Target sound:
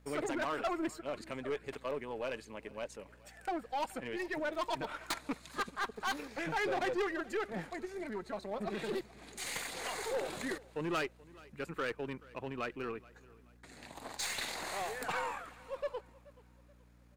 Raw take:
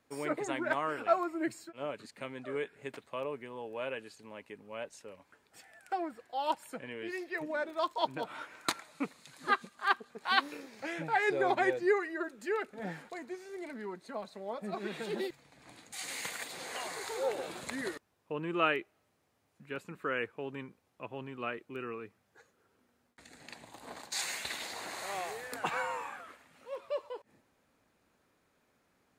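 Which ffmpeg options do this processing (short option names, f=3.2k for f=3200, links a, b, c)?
-filter_complex "[0:a]aeval=exprs='val(0)+0.000708*(sin(2*PI*60*n/s)+sin(2*PI*2*60*n/s)/2+sin(2*PI*3*60*n/s)/3+sin(2*PI*4*60*n/s)/4+sin(2*PI*5*60*n/s)/5)':c=same,aeval=exprs='(tanh(28.2*val(0)+0.35)-tanh(0.35))/28.2':c=same,asplit=2[a][b];[b]aeval=exprs='0.0168*(abs(mod(val(0)/0.0168+3,4)-2)-1)':c=same,volume=-7.5dB[c];[a][c]amix=inputs=2:normalize=0,atempo=1.7,aecho=1:1:429|858|1287:0.0794|0.0294|0.0109"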